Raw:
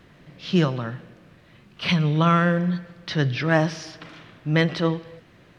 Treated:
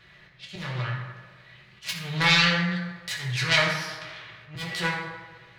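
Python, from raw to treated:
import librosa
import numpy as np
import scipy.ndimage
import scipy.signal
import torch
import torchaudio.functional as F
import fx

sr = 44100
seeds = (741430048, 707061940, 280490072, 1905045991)

y = fx.self_delay(x, sr, depth_ms=0.67)
y = fx.peak_eq(y, sr, hz=160.0, db=7.0, octaves=0.26)
y = fx.auto_swell(y, sr, attack_ms=233.0)
y = fx.graphic_eq(y, sr, hz=(250, 2000, 4000), db=(-12, 9, 10))
y = fx.rev_fdn(y, sr, rt60_s=1.3, lf_ratio=0.75, hf_ratio=0.5, size_ms=48.0, drr_db=-3.5)
y = F.gain(torch.from_numpy(y), -8.5).numpy()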